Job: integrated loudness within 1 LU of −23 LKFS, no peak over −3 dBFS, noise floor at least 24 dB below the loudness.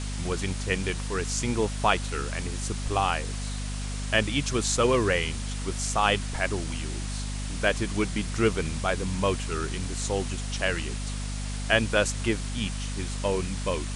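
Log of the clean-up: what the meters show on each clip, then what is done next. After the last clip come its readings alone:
mains hum 50 Hz; hum harmonics up to 250 Hz; level of the hum −30 dBFS; background noise floor −32 dBFS; target noise floor −52 dBFS; integrated loudness −28.0 LKFS; sample peak −7.0 dBFS; target loudness −23.0 LKFS
→ mains-hum notches 50/100/150/200/250 Hz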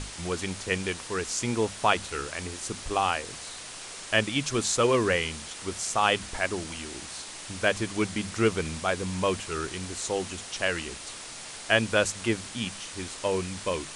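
mains hum none found; background noise floor −41 dBFS; target noise floor −53 dBFS
→ noise reduction from a noise print 12 dB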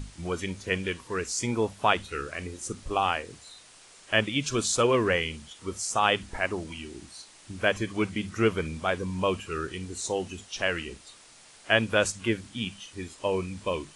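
background noise floor −53 dBFS; integrated loudness −28.5 LKFS; sample peak −7.0 dBFS; target loudness −23.0 LKFS
→ level +5.5 dB
brickwall limiter −3 dBFS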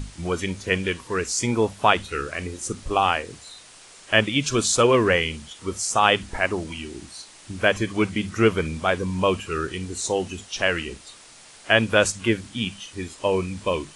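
integrated loudness −23.0 LKFS; sample peak −3.0 dBFS; background noise floor −48 dBFS

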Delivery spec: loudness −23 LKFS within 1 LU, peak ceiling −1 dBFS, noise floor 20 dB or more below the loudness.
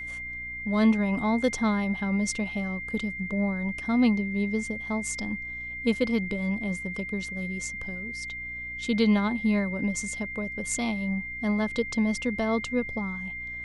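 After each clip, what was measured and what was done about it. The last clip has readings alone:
mains hum 60 Hz; hum harmonics up to 300 Hz; level of the hum −46 dBFS; interfering tone 2,100 Hz; level of the tone −34 dBFS; integrated loudness −28.0 LKFS; sample peak −12.0 dBFS; target loudness −23.0 LKFS
→ hum removal 60 Hz, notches 5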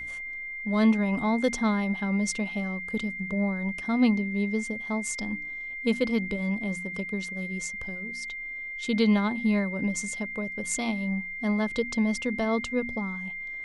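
mains hum none found; interfering tone 2,100 Hz; level of the tone −34 dBFS
→ notch filter 2,100 Hz, Q 30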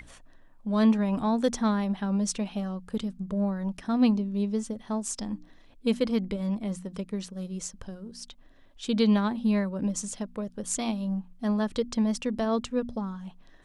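interfering tone none found; integrated loudness −28.5 LKFS; sample peak −12.5 dBFS; target loudness −23.0 LKFS
→ level +5.5 dB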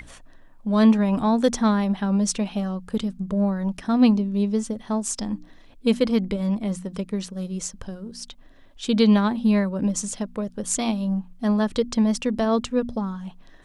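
integrated loudness −23.0 LKFS; sample peak −7.0 dBFS; background noise floor −50 dBFS

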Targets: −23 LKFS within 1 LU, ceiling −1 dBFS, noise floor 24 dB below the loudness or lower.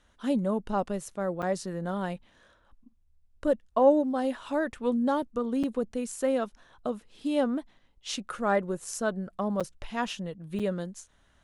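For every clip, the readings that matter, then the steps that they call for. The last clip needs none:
number of dropouts 4; longest dropout 6.4 ms; integrated loudness −30.0 LKFS; sample peak −10.5 dBFS; target loudness −23.0 LKFS
→ repair the gap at 0:01.42/0:05.63/0:09.60/0:10.59, 6.4 ms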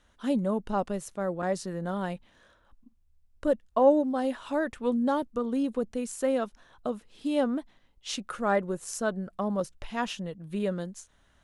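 number of dropouts 0; integrated loudness −30.0 LKFS; sample peak −10.5 dBFS; target loudness −23.0 LKFS
→ level +7 dB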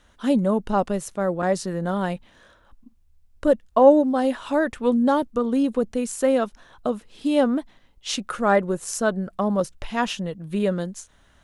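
integrated loudness −23.0 LKFS; sample peak −3.5 dBFS; background noise floor −58 dBFS

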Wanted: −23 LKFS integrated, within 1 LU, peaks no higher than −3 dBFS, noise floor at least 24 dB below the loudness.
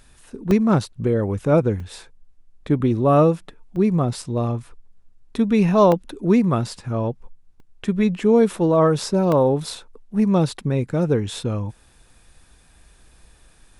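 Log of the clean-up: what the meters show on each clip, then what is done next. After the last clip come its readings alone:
number of dropouts 7; longest dropout 1.6 ms; integrated loudness −20.0 LKFS; sample peak −5.0 dBFS; target loudness −23.0 LKFS
→ repair the gap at 0:00.51/0:01.80/0:03.76/0:05.92/0:06.79/0:07.60/0:09.32, 1.6 ms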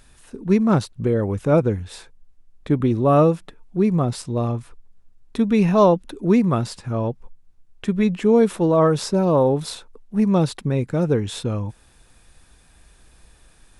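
number of dropouts 0; integrated loudness −20.0 LKFS; sample peak −5.0 dBFS; target loudness −23.0 LKFS
→ level −3 dB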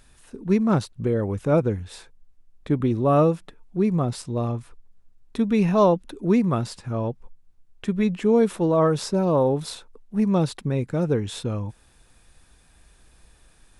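integrated loudness −23.0 LKFS; sample peak −8.0 dBFS; background noise floor −57 dBFS

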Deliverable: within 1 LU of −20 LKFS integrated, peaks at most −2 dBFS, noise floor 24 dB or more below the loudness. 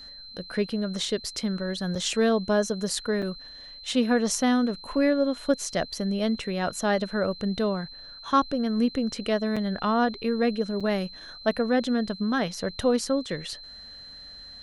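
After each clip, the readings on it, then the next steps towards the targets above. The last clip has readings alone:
number of dropouts 4; longest dropout 5.7 ms; interfering tone 4,100 Hz; level of the tone −42 dBFS; integrated loudness −26.5 LKFS; sample peak −10.0 dBFS; target loudness −20.0 LKFS
→ repair the gap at 0:01.95/0:03.22/0:09.56/0:10.80, 5.7 ms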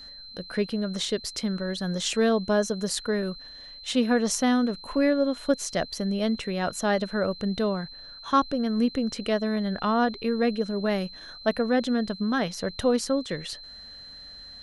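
number of dropouts 0; interfering tone 4,100 Hz; level of the tone −42 dBFS
→ notch filter 4,100 Hz, Q 30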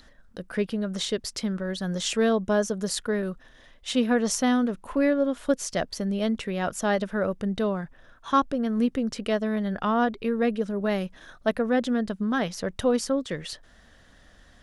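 interfering tone none found; integrated loudness −26.5 LKFS; sample peak −9.5 dBFS; target loudness −20.0 LKFS
→ level +6.5 dB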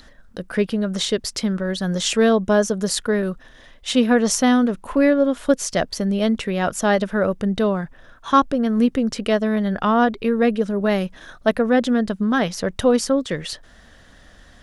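integrated loudness −20.0 LKFS; sample peak −3.0 dBFS; background noise floor −48 dBFS

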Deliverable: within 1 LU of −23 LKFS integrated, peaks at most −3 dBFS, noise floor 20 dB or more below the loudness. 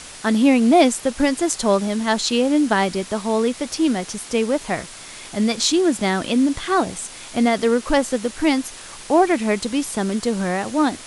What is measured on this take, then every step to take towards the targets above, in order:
background noise floor −38 dBFS; target noise floor −40 dBFS; integrated loudness −20.0 LKFS; sample peak −3.0 dBFS; target loudness −23.0 LKFS
→ broadband denoise 6 dB, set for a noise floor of −38 dBFS
level −3 dB

